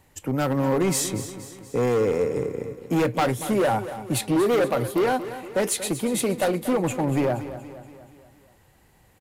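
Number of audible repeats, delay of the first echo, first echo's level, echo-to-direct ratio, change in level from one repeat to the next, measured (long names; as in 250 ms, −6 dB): 5, 236 ms, −13.0 dB, −11.5 dB, repeats not evenly spaced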